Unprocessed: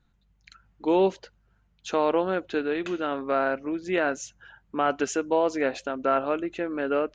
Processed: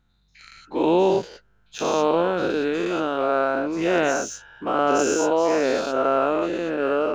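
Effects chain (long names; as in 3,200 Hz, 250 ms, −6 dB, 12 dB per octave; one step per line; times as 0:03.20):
every bin's largest magnitude spread in time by 240 ms
dynamic equaliser 1,900 Hz, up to −7 dB, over −40 dBFS, Q 2.4
in parallel at −7 dB: slack as between gear wheels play −30 dBFS
on the sum: level −3.5 dB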